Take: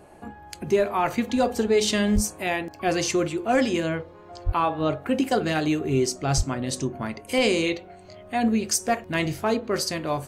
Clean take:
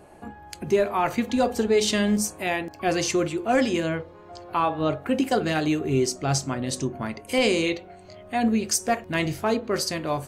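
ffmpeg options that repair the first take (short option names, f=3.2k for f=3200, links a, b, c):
-filter_complex "[0:a]asplit=3[a][b][c];[a]afade=t=out:st=2.14:d=0.02[d];[b]highpass=f=140:w=0.5412,highpass=f=140:w=1.3066,afade=t=in:st=2.14:d=0.02,afade=t=out:st=2.26:d=0.02[e];[c]afade=t=in:st=2.26:d=0.02[f];[d][e][f]amix=inputs=3:normalize=0,asplit=3[g][h][i];[g]afade=t=out:st=4.45:d=0.02[j];[h]highpass=f=140:w=0.5412,highpass=f=140:w=1.3066,afade=t=in:st=4.45:d=0.02,afade=t=out:st=4.57:d=0.02[k];[i]afade=t=in:st=4.57:d=0.02[l];[j][k][l]amix=inputs=3:normalize=0,asplit=3[m][n][o];[m]afade=t=out:st=6.36:d=0.02[p];[n]highpass=f=140:w=0.5412,highpass=f=140:w=1.3066,afade=t=in:st=6.36:d=0.02,afade=t=out:st=6.48:d=0.02[q];[o]afade=t=in:st=6.48:d=0.02[r];[p][q][r]amix=inputs=3:normalize=0"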